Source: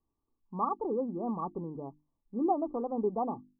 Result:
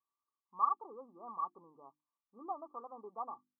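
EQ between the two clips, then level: band-pass filter 1.2 kHz, Q 5.8; +3.5 dB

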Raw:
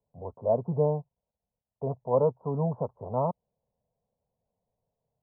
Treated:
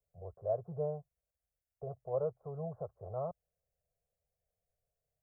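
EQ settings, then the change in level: graphic EQ 125/250/500/1000 Hz -6/-7/-7/-5 dB; dynamic bell 270 Hz, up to -5 dB, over -46 dBFS, Q 0.8; static phaser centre 940 Hz, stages 6; +1.5 dB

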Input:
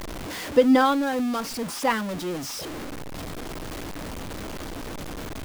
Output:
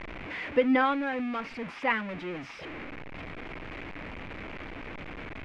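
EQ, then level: resonant low-pass 2.3 kHz, resonance Q 3.5; -7.0 dB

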